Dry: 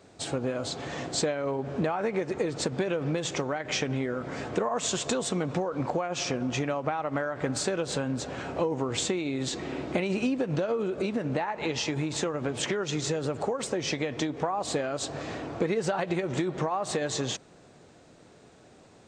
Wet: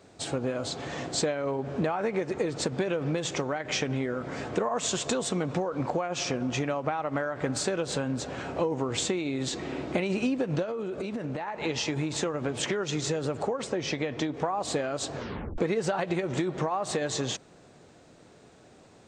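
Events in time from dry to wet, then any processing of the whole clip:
10.62–11.64 compressor, threshold -29 dBFS
13.47–14.34 air absorption 57 m
15.15 tape stop 0.43 s

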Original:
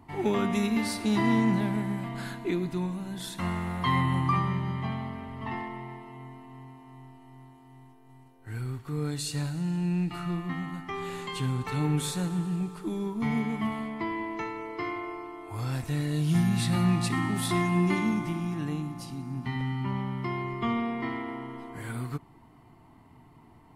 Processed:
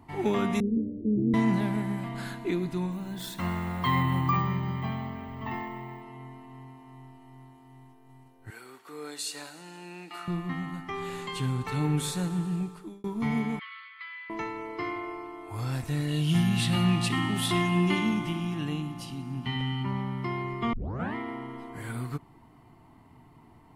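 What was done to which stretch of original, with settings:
0.6–1.34 steep low-pass 550 Hz 96 dB/oct
2.92–6.02 careless resampling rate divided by 2×, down filtered, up hold
8.5–10.28 Bessel high-pass 480 Hz, order 4
12.59–13.04 fade out
13.59–14.3 Chebyshev band-pass 1200–4600 Hz, order 5
16.08–19.83 bell 3000 Hz +12 dB 0.37 oct
20.73 tape start 0.42 s

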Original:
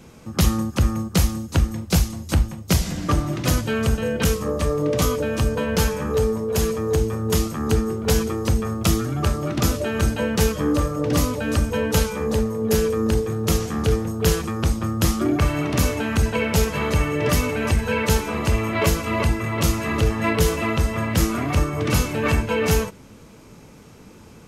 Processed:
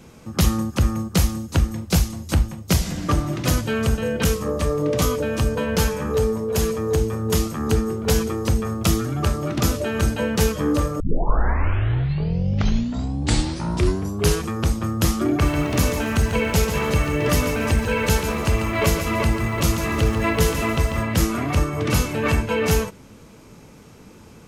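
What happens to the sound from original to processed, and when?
11 tape start 3.45 s
15.28–21.03 lo-fi delay 0.142 s, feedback 35%, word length 7-bit, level -8.5 dB

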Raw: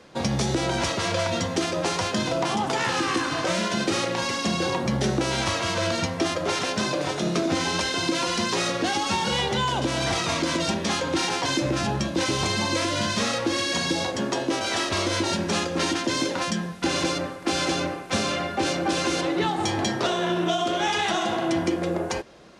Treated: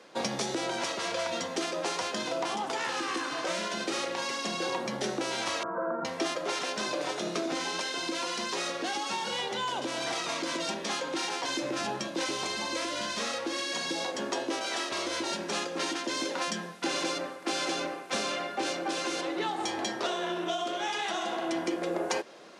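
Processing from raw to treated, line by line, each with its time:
5.63–6.05 Chebyshev band-pass 120–1500 Hz, order 5
whole clip: HPF 310 Hz 12 dB/oct; vocal rider 0.5 s; gain -6 dB

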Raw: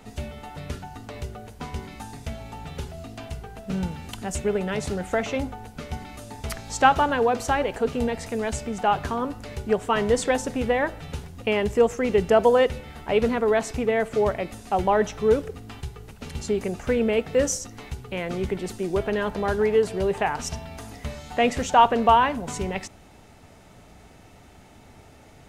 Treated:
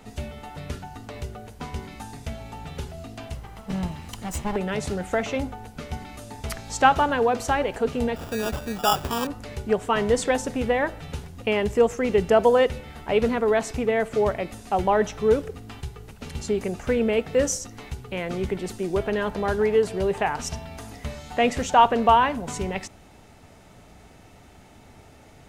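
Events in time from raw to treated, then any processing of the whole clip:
3.34–4.56 minimum comb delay 1 ms
8.16–9.27 sample-rate reducer 2100 Hz

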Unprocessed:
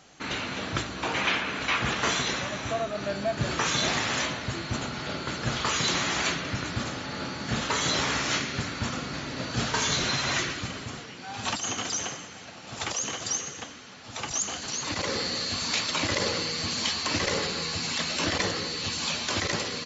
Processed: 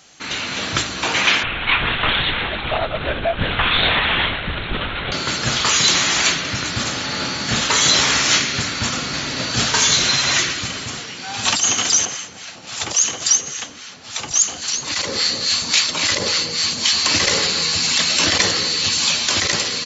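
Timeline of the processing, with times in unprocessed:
1.43–5.12 LPC vocoder at 8 kHz whisper
12.05–16.93 harmonic tremolo 3.6 Hz, crossover 900 Hz
whole clip: high shelf 2000 Hz +10.5 dB; AGC gain up to 7 dB

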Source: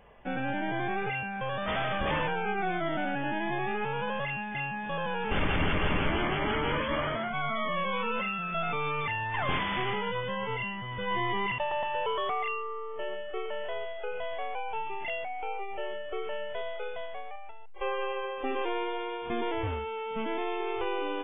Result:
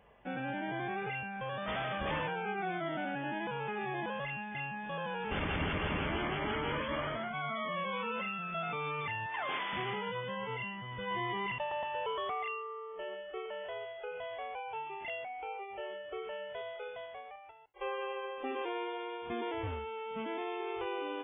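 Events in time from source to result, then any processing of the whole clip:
3.47–4.06 reverse
9.26–9.73 HPF 400 Hz
whole clip: HPF 45 Hz; gain -5.5 dB

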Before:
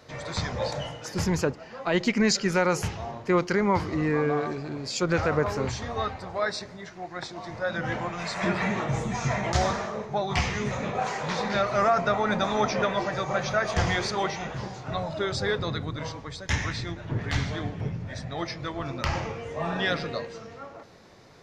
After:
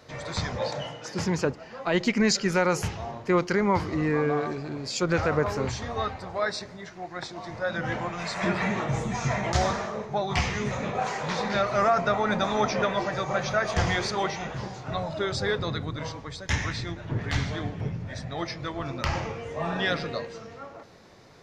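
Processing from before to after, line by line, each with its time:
0.57–1.45 BPF 130–7200 Hz

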